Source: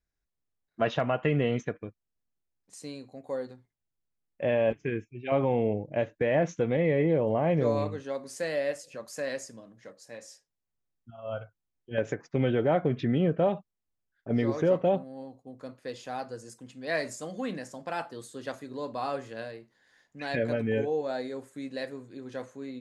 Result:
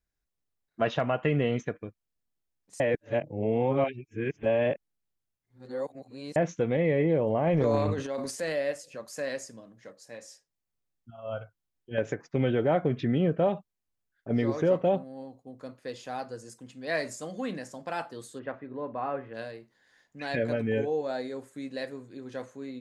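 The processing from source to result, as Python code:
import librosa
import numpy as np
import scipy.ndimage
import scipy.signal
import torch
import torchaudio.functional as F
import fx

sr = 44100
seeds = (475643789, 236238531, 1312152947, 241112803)

y = fx.transient(x, sr, attack_db=-1, sustain_db=11, at=(7.47, 8.62))
y = fx.lowpass(y, sr, hz=2300.0, slope=24, at=(18.38, 19.33), fade=0.02)
y = fx.edit(y, sr, fx.reverse_span(start_s=2.8, length_s=3.56), tone=tone)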